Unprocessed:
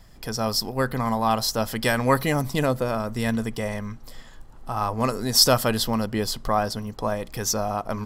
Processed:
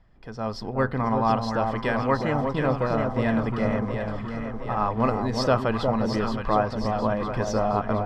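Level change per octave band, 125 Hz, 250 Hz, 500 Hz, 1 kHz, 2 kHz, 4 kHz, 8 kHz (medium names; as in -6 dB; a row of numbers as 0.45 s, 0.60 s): +0.5 dB, +1.0 dB, +1.0 dB, +1.0 dB, -2.0 dB, -13.0 dB, under -15 dB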